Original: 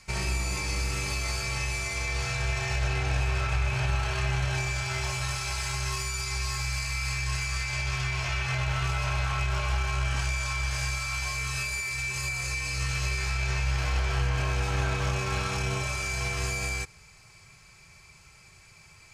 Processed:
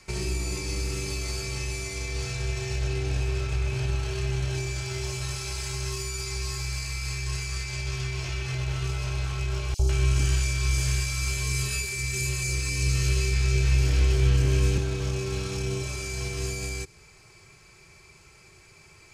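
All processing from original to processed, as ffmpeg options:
-filter_complex "[0:a]asettb=1/sr,asplit=3[a][b][c];[a]atrim=end=9.744[d];[b]atrim=start=9.74:end=14.78,asetpts=PTS-STARTPTS,afade=t=in:d=0.004:c=qsin,afade=t=out:st=5.036:d=0.004:c=qsin,acontrast=64,acrossover=split=770|4700[e][f][g];[e]adelay=50[h];[f]adelay=150[i];[h][i][g]amix=inputs=3:normalize=0,atrim=end_sample=222264[j];[c]atrim=start=14.776[k];[d][j]acrossfade=d=0.004:c1=hsin:c2=qsin[l];[l][k]acrossfade=d=0.004:c1=qsin:c2=hsin,equalizer=f=370:w=2:g=11.5,acrossover=split=360|3000[m][n][o];[n]acompressor=threshold=-42dB:ratio=6[p];[m][p][o]amix=inputs=3:normalize=0"

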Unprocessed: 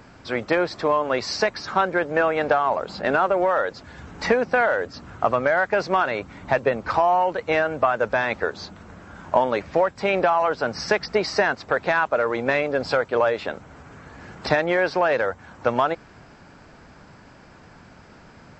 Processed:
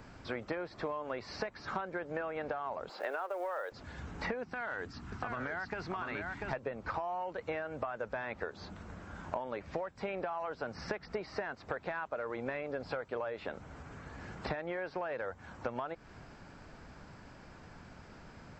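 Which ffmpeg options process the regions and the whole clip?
-filter_complex "[0:a]asettb=1/sr,asplit=3[a][b][c];[a]atrim=end=2.894[d];[b]atrim=start=2.89:end=3.72,asetpts=PTS-STARTPTS,afade=t=in:d=0.004:c=qsin,afade=t=out:st=0.826:d=0.004:c=qsin,highpass=f=390:w=0.5412,highpass=f=390:w=1.3066,acrusher=bits=6:mode=log:mix=0:aa=0.000001[e];[c]atrim=start=3.716[f];[d][e]acrossfade=d=0.004:c1=hsin:c2=qsin[g];[g][f]acrossfade=d=0.004:c1=qsin:c2=hsin,asettb=1/sr,asplit=3[h][i][j];[h]atrim=end=4.434[k];[i]atrim=start=4.43:end=6.53,asetpts=PTS-STARTPTS,afade=t=in:d=0.004:c=qsin,afade=t=out:st=2.096:d=0.004:c=qsin,equalizer=f=550:t=o:w=0.52:g=-13.5,acompressor=threshold=-24dB:ratio=6:attack=3.2:release=140:knee=1:detection=peak,aecho=1:1:692:0.596,atrim=end_sample=92610[l];[j]atrim=start=6.526[m];[k][l]acrossfade=d=0.004:c1=hsin:c2=qsin[n];[n][m]acrossfade=d=0.004:c1=qsin:c2=hsin,acrossover=split=3100[o][p];[p]acompressor=threshold=-47dB:ratio=4:attack=1:release=60[q];[o][q]amix=inputs=2:normalize=0,lowshelf=f=64:g=8,acompressor=threshold=-28dB:ratio=10,volume=-6dB"

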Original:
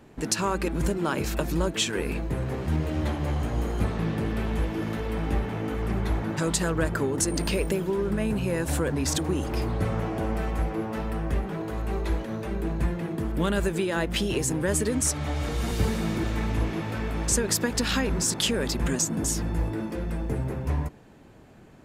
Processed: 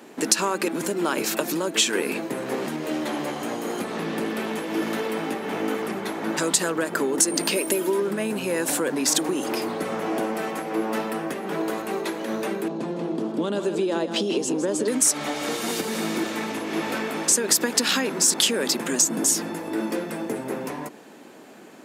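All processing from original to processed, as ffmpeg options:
-filter_complex "[0:a]asettb=1/sr,asplit=3[a][b][c];[a]atrim=end=7.564[d];[b]atrim=start=7.56:end=8,asetpts=PTS-STARTPTS,afade=t=in:d=0.004:c=qsin,afade=t=out:st=0.436:d=0.004:c=qsin,equalizer=f=11k:w=1.7:g=9.5,aecho=1:1:3.2:0.52,atrim=end_sample=19404[e];[c]atrim=start=7.996[f];[d][e]acrossfade=d=0.004:c1=hsin:c2=qsin[g];[g][f]acrossfade=d=0.004:c1=qsin:c2=hsin,asettb=1/sr,asplit=3[h][i][j];[h]atrim=end=12.684[k];[i]atrim=start=12.68:end=14.88,asetpts=PTS-STARTPTS,afade=t=in:d=0.004:c=qsin,afade=t=out:st=2.196:d=0.004:c=qsin,highpass=110,lowpass=4.3k,equalizer=f=1.9k:w=1.1:g=-14,aecho=1:1:159:0.316,atrim=end_sample=97020[l];[j]atrim=start=14.876[m];[k][l]acrossfade=d=0.004:c1=hsin:c2=qsin[n];[n][m]acrossfade=d=0.004:c1=qsin:c2=hsin,acompressor=threshold=-27dB:ratio=6,highpass=f=230:w=0.5412,highpass=f=230:w=1.3066,highshelf=f=4k:g=6,volume=8dB"

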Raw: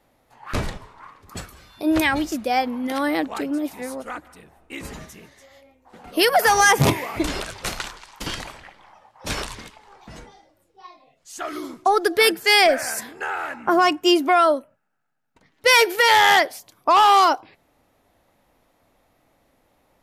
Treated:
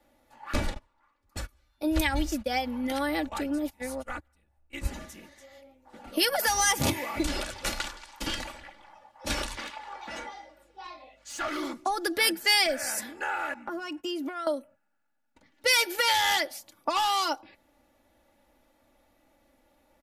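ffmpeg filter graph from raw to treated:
-filter_complex "[0:a]asettb=1/sr,asplit=3[a][b][c];[a]atrim=end=0.744[d];[b]atrim=start=0.74:end=4.87,asetpts=PTS-STARTPTS,afade=t=in:d=0.004:c=qsin,afade=t=out:st=4.126:d=0.004:c=qsin,asubboost=boost=9:cutoff=96,agate=range=-20dB:threshold=-36dB:ratio=16:release=100:detection=peak[e];[c]atrim=start=4.866[f];[d][e]acrossfade=d=0.004:c1=hsin:c2=qsin[g];[g][f]acrossfade=d=0.004:c1=qsin:c2=hsin,asettb=1/sr,asplit=3[h][i][j];[h]atrim=end=9.574[k];[i]atrim=start=9.57:end=11.73,asetpts=PTS-STARTPTS,afade=t=in:d=0.004:c=qsin,afade=t=out:st=2.156:d=0.004:c=qsin,lowshelf=f=420:g=-6.5,asplit=2[l][m];[m]highpass=f=720:p=1,volume=20dB,asoftclip=type=tanh:threshold=-19.5dB[n];[l][n]amix=inputs=2:normalize=0,lowpass=f=2.3k:p=1,volume=-6dB,aeval=exprs='val(0)+0.000501*(sin(2*PI*50*n/s)+sin(2*PI*2*50*n/s)/2+sin(2*PI*3*50*n/s)/3+sin(2*PI*4*50*n/s)/4+sin(2*PI*5*50*n/s)/5)':c=same[o];[j]atrim=start=11.726[p];[k][o]acrossfade=d=0.004:c1=hsin:c2=qsin[q];[q][p]acrossfade=d=0.004:c1=qsin:c2=hsin,asettb=1/sr,asplit=3[r][s][t];[r]atrim=end=13.544[u];[s]atrim=start=13.54:end=14.47,asetpts=PTS-STARTPTS,afade=t=in:d=0.004:c=qsin,afade=t=out:st=0.926:d=0.004:c=qsin,agate=range=-33dB:threshold=-35dB:ratio=3:release=100:detection=peak,acompressor=threshold=-30dB:ratio=4:attack=3.2:release=140:knee=1:detection=peak[v];[t]atrim=start=14.466[w];[u][v]acrossfade=d=0.004:c1=hsin:c2=qsin[x];[x][w]acrossfade=d=0.004:c1=qsin:c2=hsin,bandreject=f=1.1k:w=16,aecho=1:1:3.5:0.65,acrossover=split=150|3000[y][z][aa];[z]acompressor=threshold=-21dB:ratio=6[ab];[y][ab][aa]amix=inputs=3:normalize=0,volume=-4.5dB"

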